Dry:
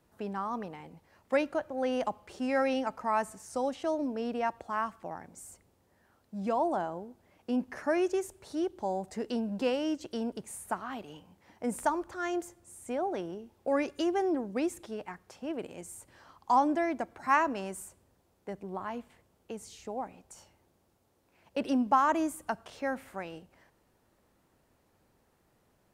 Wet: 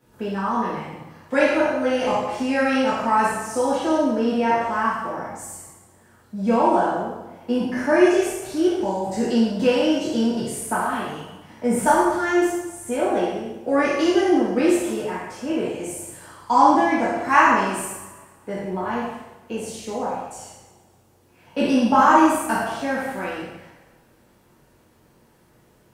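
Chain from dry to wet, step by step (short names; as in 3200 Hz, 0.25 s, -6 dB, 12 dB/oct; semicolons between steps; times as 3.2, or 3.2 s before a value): spectral trails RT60 0.58 s; two-slope reverb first 0.77 s, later 2 s, DRR -8 dB; gain +1.5 dB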